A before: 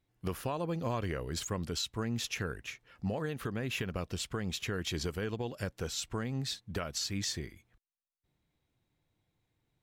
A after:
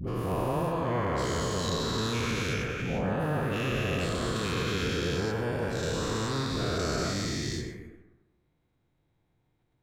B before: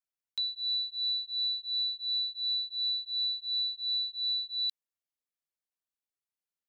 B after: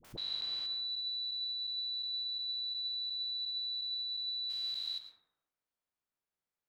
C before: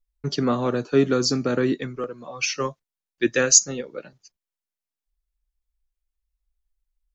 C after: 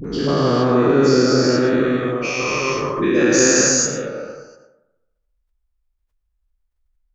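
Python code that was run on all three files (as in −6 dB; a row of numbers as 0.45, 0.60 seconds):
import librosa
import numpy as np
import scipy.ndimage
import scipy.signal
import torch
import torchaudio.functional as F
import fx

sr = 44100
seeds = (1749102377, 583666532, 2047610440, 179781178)

y = fx.spec_dilate(x, sr, span_ms=480)
y = fx.high_shelf(y, sr, hz=3000.0, db=-11.0)
y = fx.dispersion(y, sr, late='highs', ms=46.0, hz=580.0)
y = fx.echo_tape(y, sr, ms=73, feedback_pct=55, wet_db=-17, lp_hz=3200.0, drive_db=3.0, wow_cents=29)
y = fx.rev_plate(y, sr, seeds[0], rt60_s=0.96, hf_ratio=0.25, predelay_ms=90, drr_db=5.0)
y = fx.pre_swell(y, sr, db_per_s=90.0)
y = y * 10.0 ** (-1.5 / 20.0)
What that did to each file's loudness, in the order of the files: +6.5, −5.0, +5.5 LU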